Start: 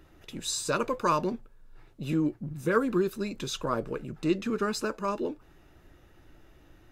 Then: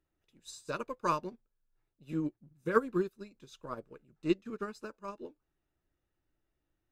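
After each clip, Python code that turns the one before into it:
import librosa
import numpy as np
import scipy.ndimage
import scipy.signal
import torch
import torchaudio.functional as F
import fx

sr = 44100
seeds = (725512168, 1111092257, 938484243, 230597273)

y = fx.upward_expand(x, sr, threshold_db=-38.0, expansion=2.5)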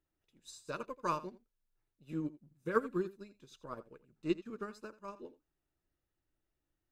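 y = x + 10.0 ** (-17.0 / 20.0) * np.pad(x, (int(83 * sr / 1000.0), 0))[:len(x)]
y = y * librosa.db_to_amplitude(-4.0)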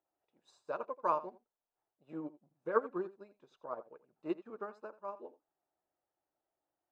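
y = fx.bandpass_q(x, sr, hz=740.0, q=2.7)
y = y * librosa.db_to_amplitude(10.0)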